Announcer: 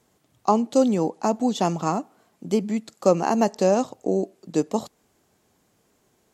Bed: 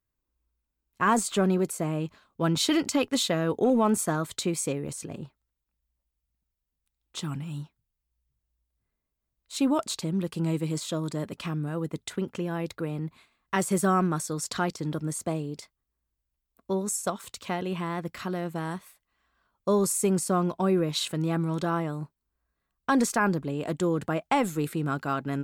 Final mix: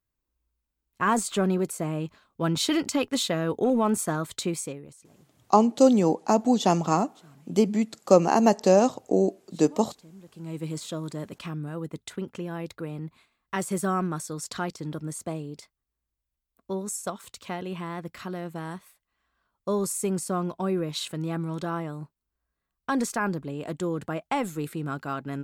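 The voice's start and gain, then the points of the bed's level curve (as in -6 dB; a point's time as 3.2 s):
5.05 s, +1.0 dB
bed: 4.54 s -0.5 dB
5.11 s -20.5 dB
10.2 s -20.5 dB
10.64 s -3 dB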